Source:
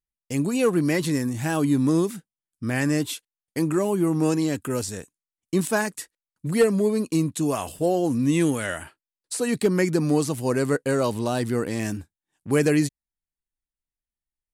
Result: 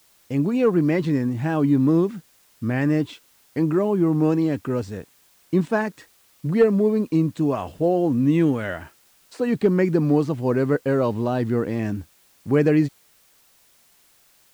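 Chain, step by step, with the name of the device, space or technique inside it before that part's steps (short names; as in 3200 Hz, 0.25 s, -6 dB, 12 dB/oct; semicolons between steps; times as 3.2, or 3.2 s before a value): cassette deck with a dirty head (tape spacing loss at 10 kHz 30 dB; wow and flutter 29 cents; white noise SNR 36 dB); gain +3.5 dB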